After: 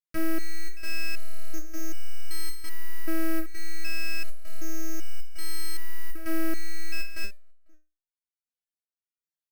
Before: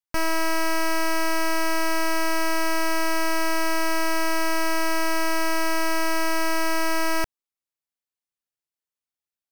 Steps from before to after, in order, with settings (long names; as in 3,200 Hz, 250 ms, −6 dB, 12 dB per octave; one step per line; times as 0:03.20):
gate pattern "xxxxxxxxx..x" 199 BPM −12 dB
Butterworth band-reject 860 Hz, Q 1.2
slap from a distant wall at 85 metres, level −26 dB
step-sequenced resonator 2.6 Hz 160–740 Hz
level +6 dB